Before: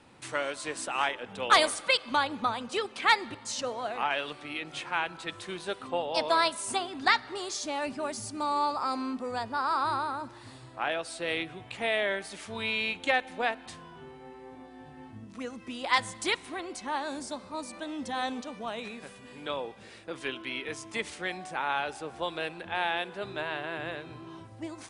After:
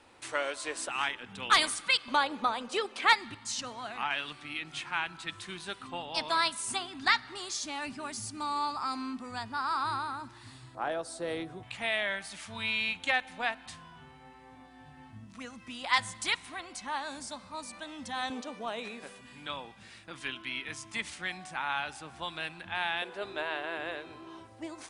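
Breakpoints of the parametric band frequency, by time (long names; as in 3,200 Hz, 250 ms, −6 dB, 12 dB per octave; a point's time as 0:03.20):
parametric band −14 dB 1.1 octaves
160 Hz
from 0:00.89 560 Hz
from 0:02.08 110 Hz
from 0:03.13 510 Hz
from 0:10.75 2,600 Hz
from 0:11.63 400 Hz
from 0:18.30 100 Hz
from 0:19.21 460 Hz
from 0:23.02 140 Hz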